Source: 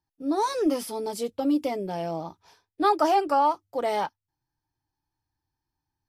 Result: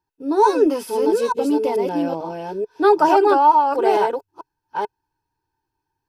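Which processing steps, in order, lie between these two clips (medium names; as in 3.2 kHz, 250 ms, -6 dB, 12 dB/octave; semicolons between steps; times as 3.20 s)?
chunks repeated in reverse 441 ms, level -3 dB; small resonant body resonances 420/930/1500/2600 Hz, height 13 dB, ringing for 30 ms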